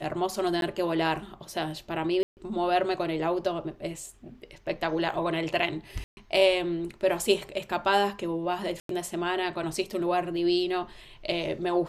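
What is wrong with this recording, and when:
0.61–0.62 s: dropout
2.23–2.37 s: dropout 139 ms
6.04–6.17 s: dropout 130 ms
8.80–8.89 s: dropout 93 ms

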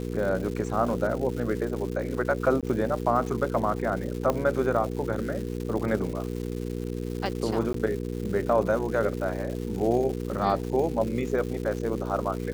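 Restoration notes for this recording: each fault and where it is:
crackle 330 per s -34 dBFS
hum 60 Hz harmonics 8 -32 dBFS
2.61–2.63 s: dropout 17 ms
4.30 s: pop -13 dBFS
7.73–7.74 s: dropout

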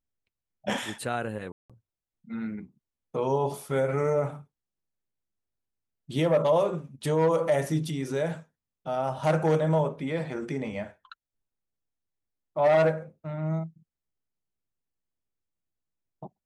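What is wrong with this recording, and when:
1.52–1.70 s: dropout 176 ms

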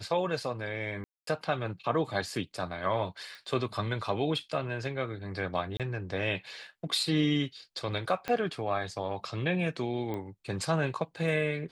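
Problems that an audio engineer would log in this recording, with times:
1.04–1.27 s: dropout 233 ms
3.35 s: pop
5.77–5.80 s: dropout 27 ms
8.28 s: pop -18 dBFS
10.14 s: pop -24 dBFS

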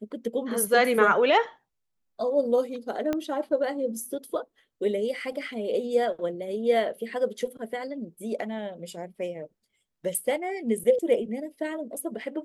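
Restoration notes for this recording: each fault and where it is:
3.13 s: pop -15 dBFS

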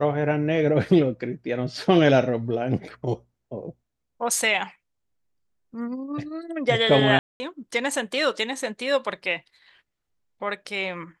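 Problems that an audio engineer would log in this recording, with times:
7.19–7.40 s: dropout 210 ms

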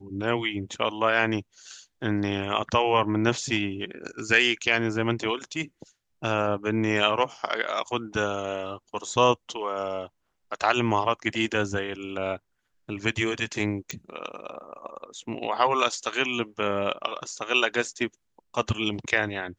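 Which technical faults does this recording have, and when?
13.91 s: pop -17 dBFS

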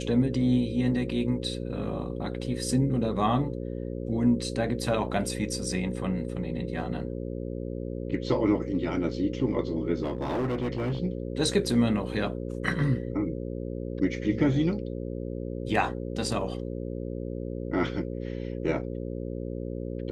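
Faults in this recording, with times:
buzz 60 Hz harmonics 9 -34 dBFS
10.03–10.98 s: clipped -25 dBFS

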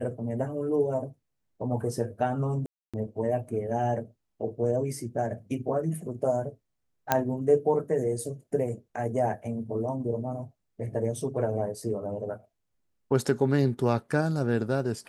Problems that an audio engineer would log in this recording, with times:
2.66–2.94 s: dropout 276 ms
7.12 s: pop -7 dBFS

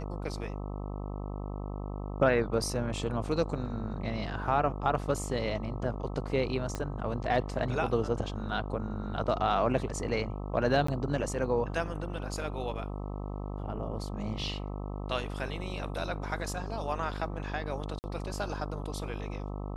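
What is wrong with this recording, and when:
buzz 50 Hz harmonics 26 -37 dBFS
6.75 s: pop -20 dBFS
10.87–10.88 s: dropout 14 ms
17.99–18.04 s: dropout 49 ms

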